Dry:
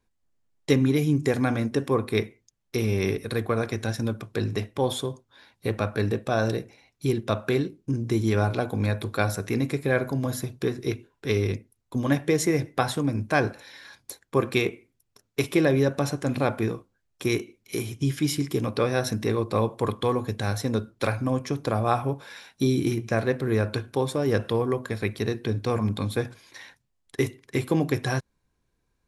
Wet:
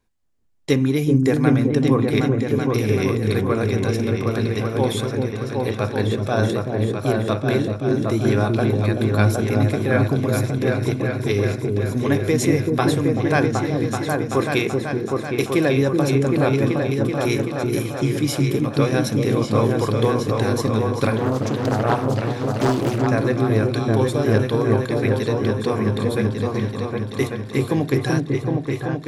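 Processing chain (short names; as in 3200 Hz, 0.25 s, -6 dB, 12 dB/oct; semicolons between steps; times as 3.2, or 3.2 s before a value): on a send: repeats that get brighter 0.382 s, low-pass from 400 Hz, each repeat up 2 oct, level 0 dB; 21.17–23.07 on the sum: Doppler distortion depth 0.56 ms; gain +2.5 dB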